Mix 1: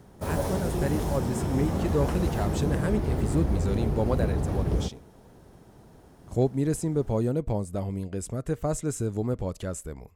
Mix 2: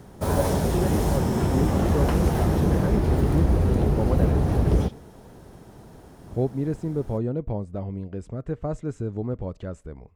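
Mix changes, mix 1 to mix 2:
speech: add head-to-tape spacing loss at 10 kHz 25 dB
background +6.0 dB

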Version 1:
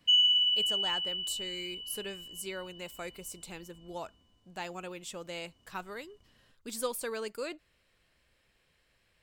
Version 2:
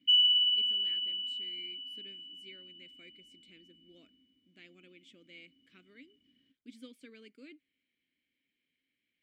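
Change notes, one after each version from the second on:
background +8.5 dB
master: add formant filter i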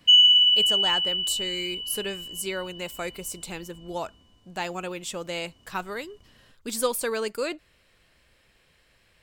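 speech +8.5 dB
master: remove formant filter i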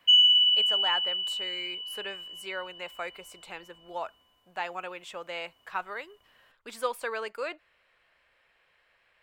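background: remove high-frequency loss of the air 92 metres
master: add three-way crossover with the lows and the highs turned down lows −18 dB, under 540 Hz, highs −17 dB, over 2,900 Hz

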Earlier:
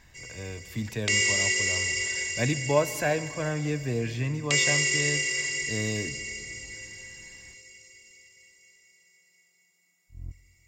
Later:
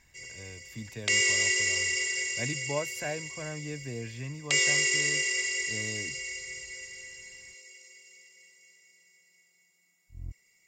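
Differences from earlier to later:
speech −7.5 dB
reverb: off

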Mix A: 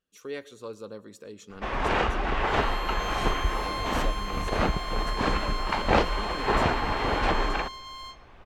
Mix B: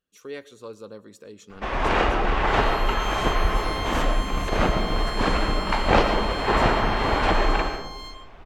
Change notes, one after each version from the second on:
first sound: send on
second sound: send on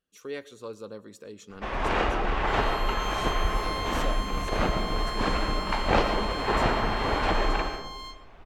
first sound −4.5 dB
second sound: send −10.5 dB

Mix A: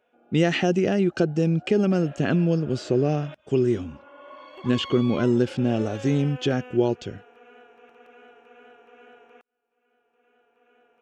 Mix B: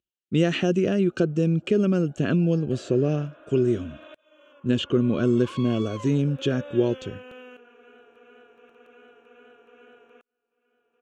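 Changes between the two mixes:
background: entry +0.80 s
master: add thirty-one-band graphic EQ 800 Hz −12 dB, 2,000 Hz −7 dB, 5,000 Hz −9 dB

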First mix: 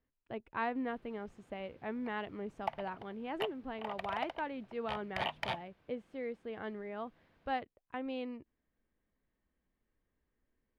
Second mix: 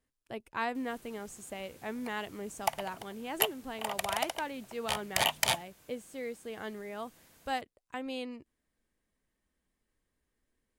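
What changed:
background +4.0 dB
master: remove high-frequency loss of the air 360 metres

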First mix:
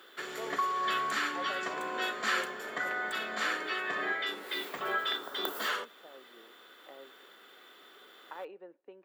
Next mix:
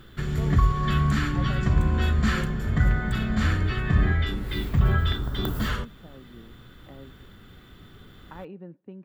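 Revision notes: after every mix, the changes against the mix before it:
master: remove high-pass filter 420 Hz 24 dB per octave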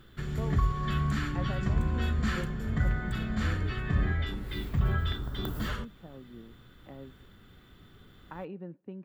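background −6.5 dB

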